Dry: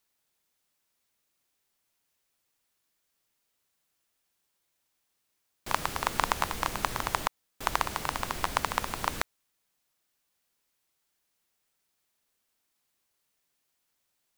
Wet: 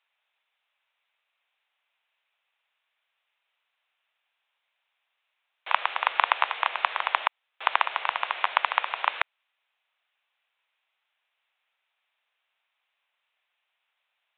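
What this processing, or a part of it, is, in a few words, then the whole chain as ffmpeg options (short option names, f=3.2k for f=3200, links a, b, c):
musical greeting card: -af "aresample=8000,aresample=44100,highpass=f=650:w=0.5412,highpass=f=650:w=1.3066,equalizer=f=2.5k:t=o:w=0.52:g=5,volume=5dB"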